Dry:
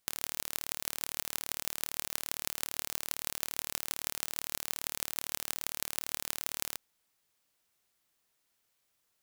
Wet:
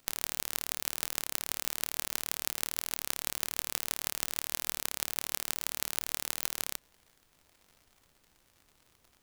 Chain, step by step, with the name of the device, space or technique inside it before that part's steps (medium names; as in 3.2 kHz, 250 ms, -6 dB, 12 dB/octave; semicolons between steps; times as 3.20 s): warped LP (warped record 33 1/3 rpm, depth 160 cents; crackle 110 per s -49 dBFS; pink noise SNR 33 dB); trim +2 dB